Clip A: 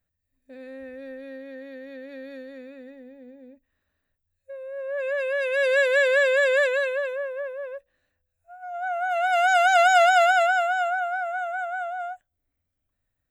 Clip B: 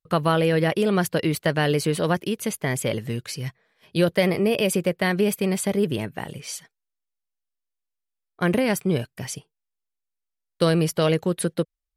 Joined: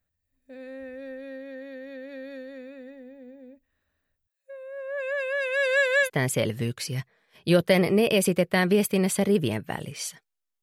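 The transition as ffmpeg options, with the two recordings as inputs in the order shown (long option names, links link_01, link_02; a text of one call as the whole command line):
ffmpeg -i cue0.wav -i cue1.wav -filter_complex "[0:a]asettb=1/sr,asplit=3[link_01][link_02][link_03];[link_01]atrim=end=4.274[link_04];[link_02]atrim=start=4.27:end=6.1,asetpts=PTS-STARTPTS,afade=type=in:duration=0.004:curve=qsin,afade=type=out:start_time=1.826:duration=0.004:curve=qsin,highpass=570[link_05];[link_03]atrim=start=6.096[link_06];[link_04][link_05]acrossfade=duration=0.004:curve1=hsin:curve2=qsin[link_07];[link_07][link_06]acrossfade=duration=0.004:curve1=qsin:curve2=hsin,apad=whole_dur=10.62,atrim=end=10.62,atrim=end=6.1,asetpts=PTS-STARTPTS[link_08];[1:a]atrim=start=2.5:end=7.1,asetpts=PTS-STARTPTS[link_09];[link_08][link_09]acrossfade=duration=0.08:curve1=tri:curve2=tri" out.wav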